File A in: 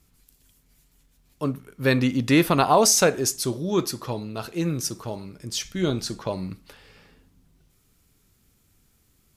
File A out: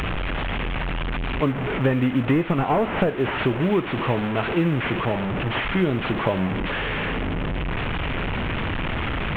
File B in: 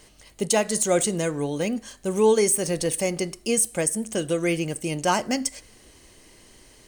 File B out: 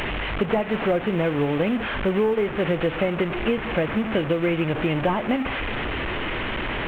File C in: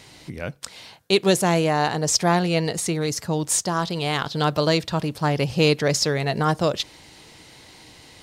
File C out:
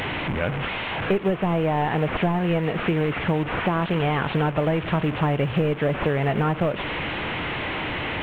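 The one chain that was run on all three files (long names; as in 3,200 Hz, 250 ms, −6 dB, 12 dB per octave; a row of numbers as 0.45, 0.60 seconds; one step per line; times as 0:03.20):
linear delta modulator 16 kbit/s, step −27.5 dBFS
downward compressor 12 to 1, threshold −25 dBFS
floating-point word with a short mantissa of 6 bits
loudness normalisation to −24 LKFS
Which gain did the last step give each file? +8.5, +7.0, +6.5 decibels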